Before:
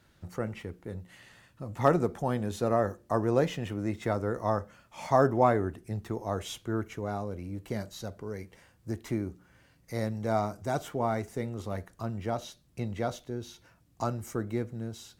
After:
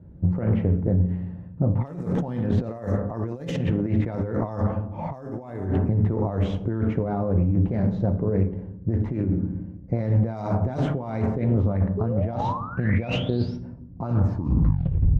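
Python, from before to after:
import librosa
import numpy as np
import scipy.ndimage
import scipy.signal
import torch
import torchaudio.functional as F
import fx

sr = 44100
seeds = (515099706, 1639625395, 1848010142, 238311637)

y = fx.tape_stop_end(x, sr, length_s=1.11)
y = fx.spec_paint(y, sr, seeds[0], shape='rise', start_s=11.97, length_s=1.6, low_hz=400.0, high_hz=5700.0, level_db=-39.0)
y = fx.rev_fdn(y, sr, rt60_s=0.86, lf_ratio=1.5, hf_ratio=0.75, size_ms=34.0, drr_db=6.5)
y = fx.env_lowpass(y, sr, base_hz=480.0, full_db=-20.0)
y = fx.highpass(y, sr, hz=45.0, slope=6)
y = fx.peak_eq(y, sr, hz=1300.0, db=-5.0, octaves=0.34)
y = fx.over_compress(y, sr, threshold_db=-37.0, ratio=-1.0)
y = fx.low_shelf(y, sr, hz=220.0, db=11.5)
y = fx.doppler_dist(y, sr, depth_ms=0.27)
y = y * 10.0 ** (6.0 / 20.0)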